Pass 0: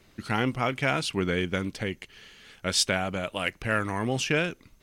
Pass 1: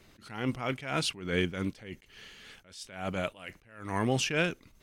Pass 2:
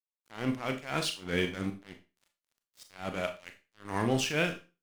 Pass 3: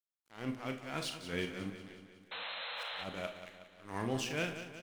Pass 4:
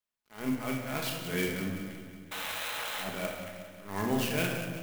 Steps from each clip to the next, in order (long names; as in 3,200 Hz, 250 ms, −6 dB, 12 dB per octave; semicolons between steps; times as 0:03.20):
level that may rise only so fast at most 100 dB per second
dead-zone distortion −42 dBFS; four-comb reverb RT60 0.3 s, combs from 27 ms, DRR 6 dB
sound drawn into the spectrogram noise, 0:02.31–0:03.04, 450–4,200 Hz −35 dBFS; repeating echo 183 ms, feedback 57%, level −11 dB; level −7.5 dB
rectangular room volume 890 cubic metres, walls mixed, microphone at 1.4 metres; converter with an unsteady clock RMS 0.036 ms; level +3.5 dB